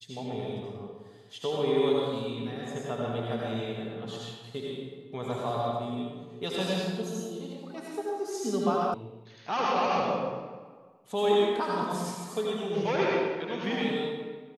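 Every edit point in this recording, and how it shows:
8.94 sound cut off

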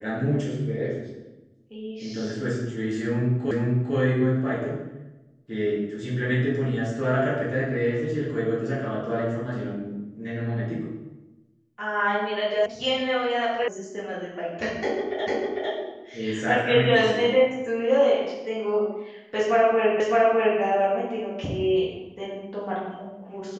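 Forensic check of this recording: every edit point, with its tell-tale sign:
3.51 repeat of the last 0.45 s
12.66 sound cut off
13.68 sound cut off
15.27 repeat of the last 0.45 s
20 repeat of the last 0.61 s

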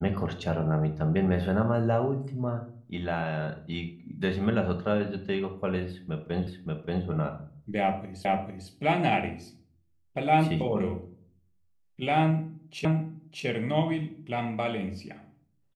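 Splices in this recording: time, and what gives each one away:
6.47 repeat of the last 0.58 s
8.25 repeat of the last 0.45 s
12.85 repeat of the last 0.61 s

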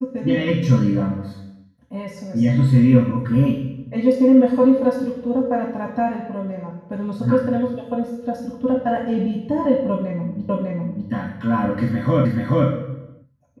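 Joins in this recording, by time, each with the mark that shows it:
10.49 repeat of the last 0.6 s
12.25 repeat of the last 0.43 s

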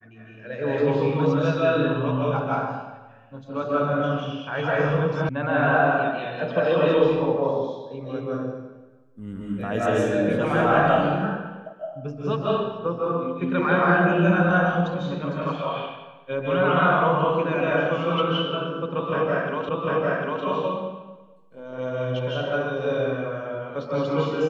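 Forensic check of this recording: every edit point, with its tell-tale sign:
5.29 sound cut off
19.69 repeat of the last 0.75 s

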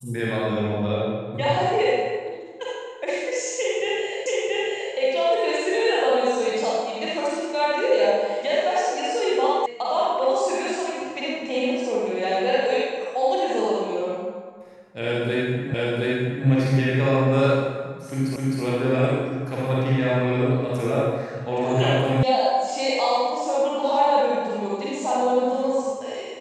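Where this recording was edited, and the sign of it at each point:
4.26 repeat of the last 0.68 s
9.66 sound cut off
15.74 repeat of the last 0.72 s
18.36 repeat of the last 0.26 s
22.23 sound cut off

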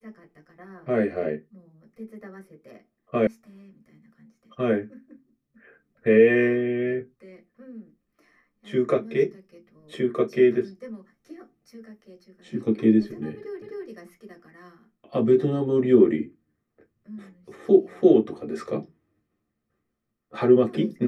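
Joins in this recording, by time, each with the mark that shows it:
3.27 sound cut off
13.62 repeat of the last 0.26 s

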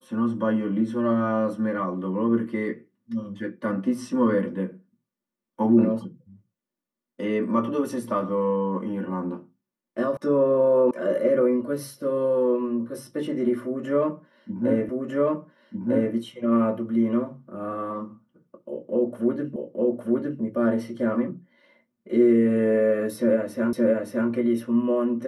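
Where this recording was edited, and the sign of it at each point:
10.17 sound cut off
10.91 sound cut off
14.89 repeat of the last 1.25 s
19.56 repeat of the last 0.86 s
23.73 repeat of the last 0.57 s

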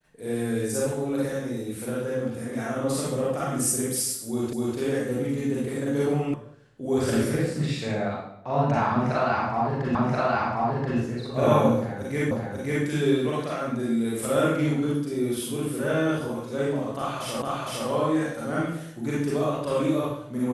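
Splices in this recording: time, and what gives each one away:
4.53 repeat of the last 0.25 s
6.34 sound cut off
9.95 repeat of the last 1.03 s
12.31 repeat of the last 0.54 s
17.42 repeat of the last 0.46 s

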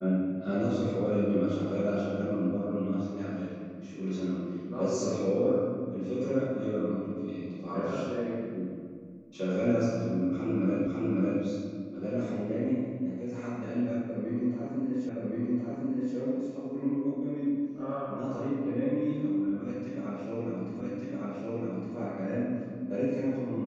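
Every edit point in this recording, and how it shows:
10.87 repeat of the last 0.55 s
15.09 repeat of the last 1.07 s
20.81 repeat of the last 1.16 s

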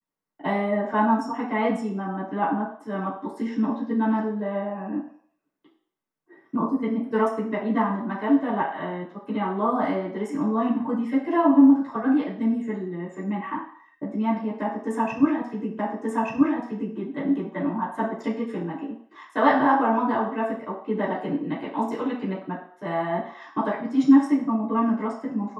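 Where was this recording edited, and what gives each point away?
15.79 repeat of the last 1.18 s

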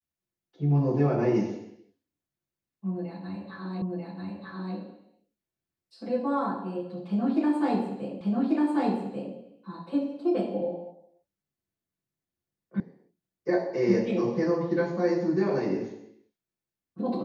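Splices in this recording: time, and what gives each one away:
3.82 repeat of the last 0.94 s
8.21 repeat of the last 1.14 s
12.8 sound cut off

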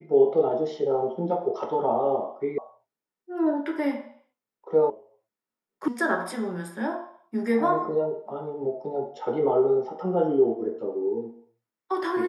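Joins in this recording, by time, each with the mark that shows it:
2.58 sound cut off
4.9 sound cut off
5.88 sound cut off

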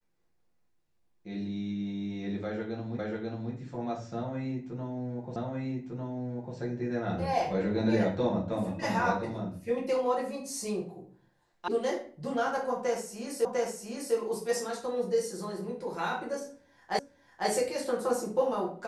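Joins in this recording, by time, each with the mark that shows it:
2.99 repeat of the last 0.54 s
5.36 repeat of the last 1.2 s
11.68 sound cut off
13.45 repeat of the last 0.7 s
16.99 repeat of the last 0.5 s

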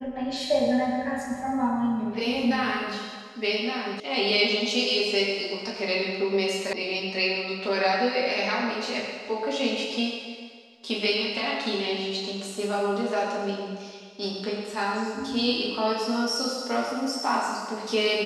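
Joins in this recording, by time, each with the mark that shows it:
4 sound cut off
6.73 sound cut off

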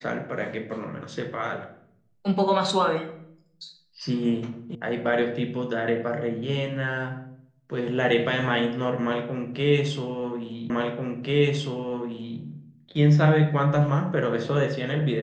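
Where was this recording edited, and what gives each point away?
4.75 sound cut off
10.7 repeat of the last 1.69 s

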